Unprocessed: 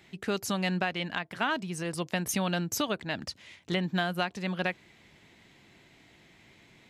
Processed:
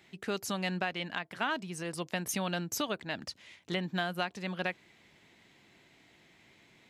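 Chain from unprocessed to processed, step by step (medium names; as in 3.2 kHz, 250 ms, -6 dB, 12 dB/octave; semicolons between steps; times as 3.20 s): bass shelf 130 Hz -7 dB; trim -3 dB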